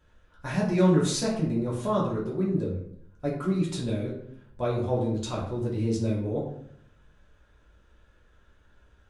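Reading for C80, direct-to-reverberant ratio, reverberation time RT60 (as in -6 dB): 8.5 dB, -5.0 dB, 0.70 s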